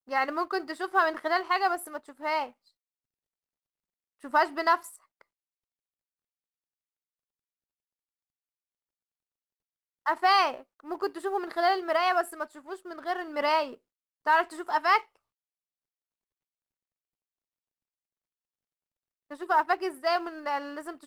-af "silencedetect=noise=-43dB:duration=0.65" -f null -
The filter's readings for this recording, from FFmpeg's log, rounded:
silence_start: 2.49
silence_end: 4.23 | silence_duration: 1.74
silence_start: 5.21
silence_end: 10.06 | silence_duration: 4.85
silence_start: 15.03
silence_end: 19.31 | silence_duration: 4.27